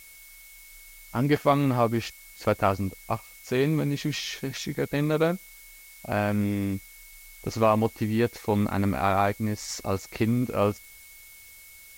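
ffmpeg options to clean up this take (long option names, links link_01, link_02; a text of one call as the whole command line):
ffmpeg -i in.wav -af "bandreject=frequency=2200:width=30,afftdn=noise_reduction=22:noise_floor=-49" out.wav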